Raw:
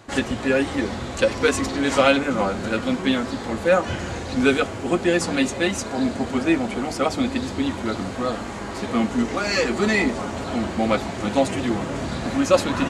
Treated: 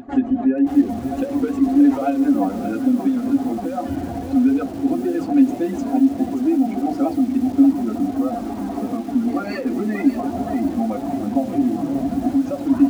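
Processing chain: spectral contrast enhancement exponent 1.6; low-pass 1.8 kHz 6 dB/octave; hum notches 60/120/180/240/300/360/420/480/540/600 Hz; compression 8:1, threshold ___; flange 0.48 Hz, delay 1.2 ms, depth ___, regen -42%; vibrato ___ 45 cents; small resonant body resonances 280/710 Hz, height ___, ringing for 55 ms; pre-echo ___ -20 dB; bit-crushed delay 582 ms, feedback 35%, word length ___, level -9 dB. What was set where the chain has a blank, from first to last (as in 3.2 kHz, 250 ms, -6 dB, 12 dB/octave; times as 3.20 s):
-22 dBFS, 8.2 ms, 4 Hz, 17 dB, 192 ms, 6-bit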